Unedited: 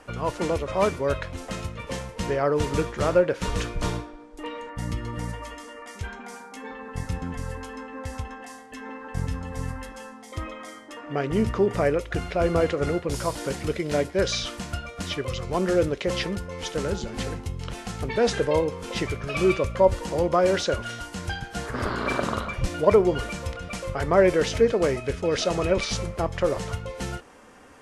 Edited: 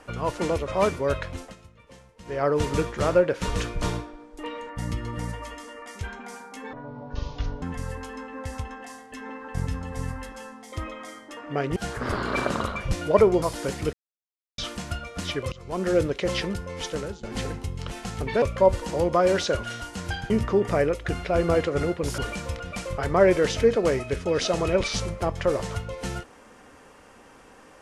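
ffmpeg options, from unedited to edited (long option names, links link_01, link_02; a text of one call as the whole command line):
ffmpeg -i in.wav -filter_complex "[0:a]asplit=14[link_01][link_02][link_03][link_04][link_05][link_06][link_07][link_08][link_09][link_10][link_11][link_12][link_13][link_14];[link_01]atrim=end=1.55,asetpts=PTS-STARTPTS,afade=type=out:start_time=1.36:duration=0.19:silence=0.133352[link_15];[link_02]atrim=start=1.55:end=2.25,asetpts=PTS-STARTPTS,volume=-17.5dB[link_16];[link_03]atrim=start=2.25:end=6.734,asetpts=PTS-STARTPTS,afade=type=in:duration=0.19:silence=0.133352[link_17];[link_04]atrim=start=6.73:end=7.22,asetpts=PTS-STARTPTS,asetrate=24255,aresample=44100,atrim=end_sample=39289,asetpts=PTS-STARTPTS[link_18];[link_05]atrim=start=7.216:end=11.362[link_19];[link_06]atrim=start=21.488:end=23.152[link_20];[link_07]atrim=start=13.238:end=13.75,asetpts=PTS-STARTPTS,afade=type=out:start_time=0.508:duration=0.004:curve=hsin[link_21];[link_08]atrim=start=13.75:end=14.4,asetpts=PTS-STARTPTS,volume=0[link_22];[link_09]atrim=start=14.4:end=15.34,asetpts=PTS-STARTPTS,afade=type=in:duration=0.004:curve=hsin,afade=type=out:start_time=0.936:duration=0.004:curve=hsin:silence=0.112202[link_23];[link_10]atrim=start=15.34:end=17.05,asetpts=PTS-STARTPTS,afade=type=in:duration=0.44:silence=0.112202,afade=type=out:start_time=1.35:duration=0.36:silence=0.105925[link_24];[link_11]atrim=start=17.05:end=18.242,asetpts=PTS-STARTPTS,afade=type=in:duration=0.004:curve=hsin:silence=0.105925[link_25];[link_12]atrim=start=19.608:end=21.492[link_26];[link_13]atrim=start=11.358:end=13.242[link_27];[link_14]atrim=start=23.148[link_28];[link_15][link_16][link_17]concat=n=3:v=0:a=1[link_29];[link_29][link_18]acrossfade=duration=0.004:curve1=hsin:curve2=hsin[link_30];[link_30][link_19]acrossfade=duration=0.004:curve1=hsin:curve2=hsin[link_31];[link_31][link_20]acrossfade=duration=0.004:curve1=hsin:curve2=hsin[link_32];[link_21][link_22][link_23][link_24][link_25]concat=n=5:v=0:a=1[link_33];[link_32][link_33]acrossfade=duration=0.004:curve1=hsin:curve2=hsin[link_34];[link_34][link_26]acrossfade=duration=0.004:curve1=hsin:curve2=hsin[link_35];[link_35][link_27]acrossfade=duration=0.004:curve1=hsin:curve2=hsin[link_36];[link_36][link_28]acrossfade=duration=0.004:curve1=hsin:curve2=hsin" out.wav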